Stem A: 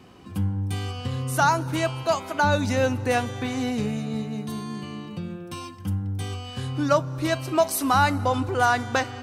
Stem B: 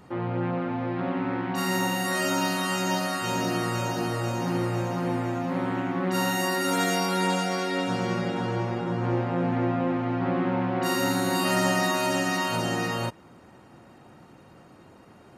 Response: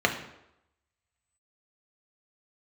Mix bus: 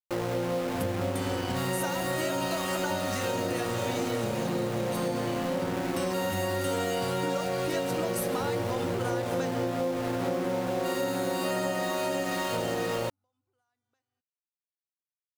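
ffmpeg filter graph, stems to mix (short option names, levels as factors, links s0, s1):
-filter_complex "[0:a]highshelf=f=5100:g=11.5,acompressor=threshold=0.0501:ratio=12,adelay=450,volume=0.891,asplit=2[s0][s1];[s1]volume=0.106[s2];[1:a]equalizer=f=500:t=o:w=0.61:g=13,bandreject=f=5600:w=12,aeval=exprs='val(0)*gte(abs(val(0)),0.0422)':c=same,volume=0.794[s3];[s2]aecho=0:1:1134|2268|3402|4536:1|0.31|0.0961|0.0298[s4];[s0][s3][s4]amix=inputs=3:normalize=0,acompressor=threshold=0.0501:ratio=6"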